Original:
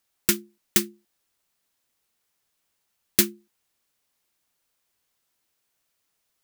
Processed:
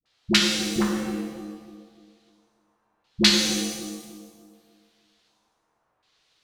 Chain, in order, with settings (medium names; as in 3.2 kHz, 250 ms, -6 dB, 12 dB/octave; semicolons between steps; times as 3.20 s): hum notches 50/100/150/200/250/300/350 Hz; in parallel at -10 dB: sine folder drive 11 dB, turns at -2 dBFS; on the sum: LFO low-pass square 0.67 Hz 990–4000 Hz; phase dispersion highs, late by 58 ms, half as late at 460 Hz; on a send: bucket-brigade echo 297 ms, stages 1024, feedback 37%, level -9 dB; on the sum: pitch-shifted reverb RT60 1.3 s, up +7 st, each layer -8 dB, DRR -0.5 dB; trim -2 dB